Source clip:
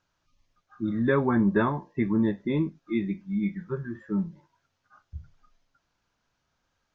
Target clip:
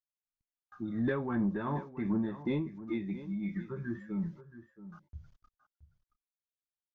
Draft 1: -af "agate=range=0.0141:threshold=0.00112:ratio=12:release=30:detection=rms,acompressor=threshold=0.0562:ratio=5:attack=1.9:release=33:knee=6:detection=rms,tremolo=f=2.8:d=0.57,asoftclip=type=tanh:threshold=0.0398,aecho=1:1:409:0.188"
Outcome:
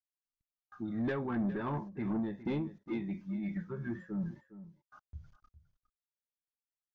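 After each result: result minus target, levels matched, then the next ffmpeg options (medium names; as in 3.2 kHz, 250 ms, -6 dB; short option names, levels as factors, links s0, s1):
saturation: distortion +13 dB; echo 265 ms early
-af "agate=range=0.0141:threshold=0.00112:ratio=12:release=30:detection=rms,acompressor=threshold=0.0562:ratio=5:attack=1.9:release=33:knee=6:detection=rms,tremolo=f=2.8:d=0.57,asoftclip=type=tanh:threshold=0.106,aecho=1:1:409:0.188"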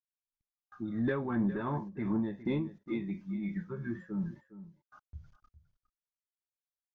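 echo 265 ms early
-af "agate=range=0.0141:threshold=0.00112:ratio=12:release=30:detection=rms,acompressor=threshold=0.0562:ratio=5:attack=1.9:release=33:knee=6:detection=rms,tremolo=f=2.8:d=0.57,asoftclip=type=tanh:threshold=0.106,aecho=1:1:674:0.188"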